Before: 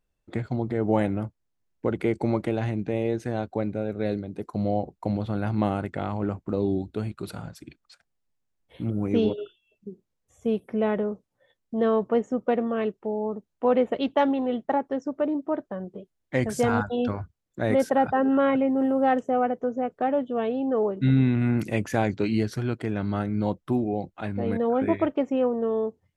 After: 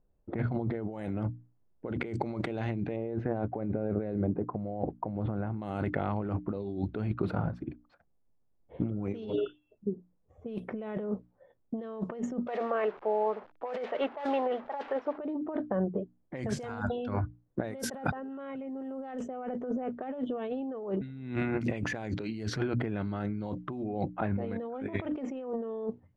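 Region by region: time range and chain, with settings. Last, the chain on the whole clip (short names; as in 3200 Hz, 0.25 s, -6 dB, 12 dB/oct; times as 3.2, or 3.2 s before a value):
2.96–5.62 block floating point 7-bit + LPF 1400 Hz
12.47–15.18 delta modulation 64 kbps, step -40.5 dBFS + three-band isolator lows -23 dB, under 500 Hz, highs -17 dB, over 4600 Hz
whole clip: notches 60/120/180/240/300 Hz; low-pass opened by the level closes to 740 Hz, open at -18 dBFS; negative-ratio compressor -34 dBFS, ratio -1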